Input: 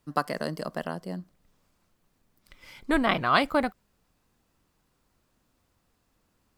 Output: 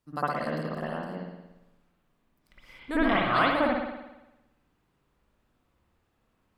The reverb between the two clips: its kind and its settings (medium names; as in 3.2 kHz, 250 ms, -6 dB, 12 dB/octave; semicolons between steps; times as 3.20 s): spring tank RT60 1 s, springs 57 ms, chirp 55 ms, DRR -9 dB; trim -9.5 dB